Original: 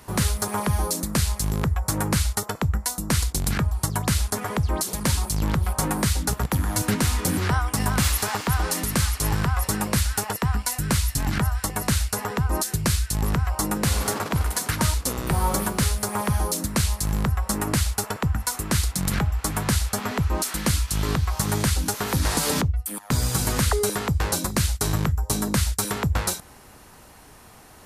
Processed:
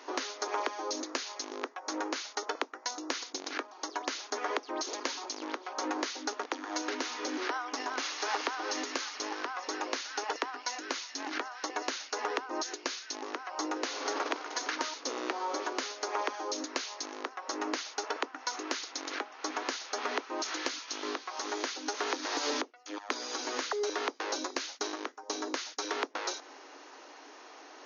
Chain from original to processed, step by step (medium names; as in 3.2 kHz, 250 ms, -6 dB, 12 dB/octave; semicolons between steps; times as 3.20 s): compression 6:1, threshold -26 dBFS, peak gain reduction 9 dB; brick-wall FIR band-pass 260–6800 Hz; transformer saturation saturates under 1.2 kHz